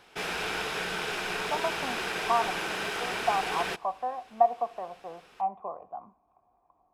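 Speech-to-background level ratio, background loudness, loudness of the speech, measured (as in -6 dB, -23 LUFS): -0.5 dB, -31.5 LUFS, -32.0 LUFS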